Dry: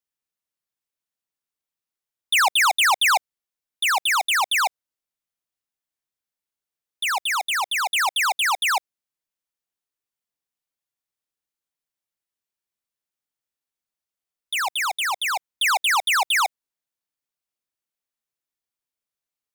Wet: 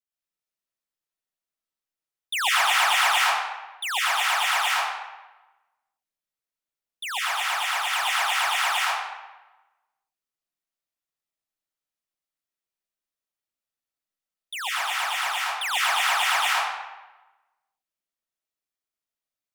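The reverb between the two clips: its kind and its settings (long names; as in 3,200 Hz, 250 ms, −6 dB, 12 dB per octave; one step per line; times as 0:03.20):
comb and all-pass reverb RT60 1.1 s, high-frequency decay 0.75×, pre-delay 80 ms, DRR −6.5 dB
level −9 dB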